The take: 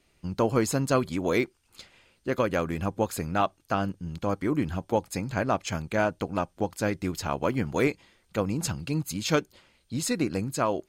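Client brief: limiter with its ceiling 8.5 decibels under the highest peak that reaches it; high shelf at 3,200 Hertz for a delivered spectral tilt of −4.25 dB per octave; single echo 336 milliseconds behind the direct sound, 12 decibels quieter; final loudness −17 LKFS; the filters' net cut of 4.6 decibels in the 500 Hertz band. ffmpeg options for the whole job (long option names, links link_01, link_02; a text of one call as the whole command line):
ffmpeg -i in.wav -af "equalizer=frequency=500:width_type=o:gain=-6,highshelf=frequency=3200:gain=8,alimiter=limit=-19dB:level=0:latency=1,aecho=1:1:336:0.251,volume=14.5dB" out.wav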